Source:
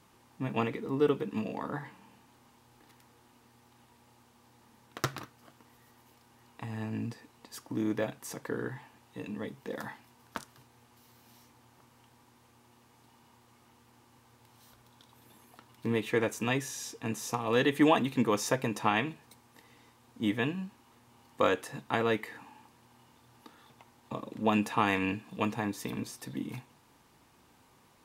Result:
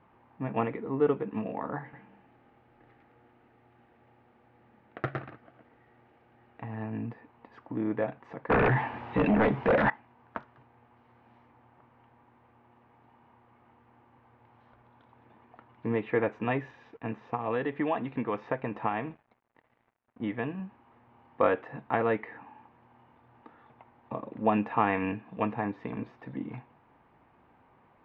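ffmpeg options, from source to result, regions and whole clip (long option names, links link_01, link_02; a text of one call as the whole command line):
ffmpeg -i in.wav -filter_complex "[0:a]asettb=1/sr,asplit=3[link_01][link_02][link_03];[link_01]atrim=end=1.824[link_04];[link_02]atrim=start=1.82:end=6.63,asetpts=PTS-STARTPTS,afade=type=in:duration=0.004:curve=qsin,afade=type=out:start_time=4.806:duration=0.004:curve=qsin,equalizer=frequency=1000:width=4.3:gain=-11.5,aecho=1:1:111:0.631,atrim=end_sample=212121[link_05];[link_03]atrim=start=6.626[link_06];[link_04][link_05]acrossfade=duration=0.004:curve1=hsin:curve2=qsin[link_07];[link_07][link_06]acrossfade=duration=0.004:curve1=qsin:curve2=hsin,asettb=1/sr,asplit=3[link_08][link_09][link_10];[link_08]atrim=end=8.504[link_11];[link_09]atrim=start=8.5:end=9.9,asetpts=PTS-STARTPTS,afade=type=in:duration=0.004:curve=qsin,afade=type=out:start_time=1.396:duration=0.004:curve=qsin,highshelf=frequency=2700:gain=6,aeval=exprs='0.1*sin(PI/2*5.62*val(0)/0.1)':channel_layout=same[link_12];[link_10]atrim=start=9.896[link_13];[link_11][link_12]acrossfade=duration=0.004:curve1=hsin:curve2=qsin[link_14];[link_14][link_13]acrossfade=duration=0.004:curve1=qsin:curve2=hsin,asettb=1/sr,asplit=3[link_15][link_16][link_17];[link_15]atrim=end=16.714[link_18];[link_16]atrim=start=16.71:end=20.6,asetpts=PTS-STARTPTS,afade=type=in:duration=0.004:curve=qsin,afade=type=out:start_time=3.886:duration=0.004:curve=qsin,acrossover=split=1400|5200[link_19][link_20][link_21];[link_19]acompressor=threshold=-29dB:ratio=4[link_22];[link_20]acompressor=threshold=-38dB:ratio=4[link_23];[link_21]acompressor=threshold=-49dB:ratio=4[link_24];[link_22][link_23][link_24]amix=inputs=3:normalize=0,aeval=exprs='sgn(val(0))*max(abs(val(0))-0.00141,0)':channel_layout=same[link_25];[link_17]atrim=start=20.596[link_26];[link_18][link_25]acrossfade=duration=0.004:curve1=hsin:curve2=qsin[link_27];[link_27][link_26]acrossfade=duration=0.004:curve1=qsin:curve2=hsin,lowpass=frequency=2300:width=0.5412,lowpass=frequency=2300:width=1.3066,equalizer=frequency=700:width=1.7:gain=5" out.wav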